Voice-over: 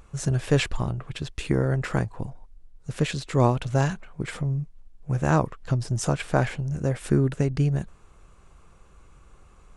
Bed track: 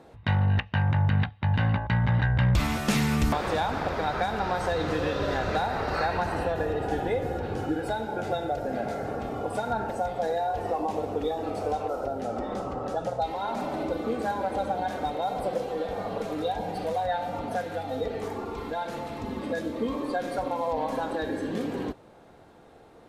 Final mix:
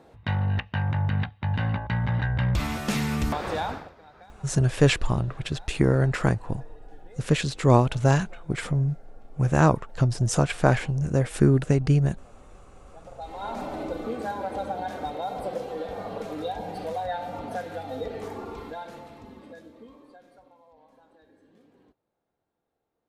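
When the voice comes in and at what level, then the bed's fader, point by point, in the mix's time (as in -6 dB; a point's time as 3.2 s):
4.30 s, +2.5 dB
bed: 3.71 s -2 dB
3.95 s -23.5 dB
12.85 s -23.5 dB
13.46 s -2.5 dB
18.52 s -2.5 dB
20.65 s -29 dB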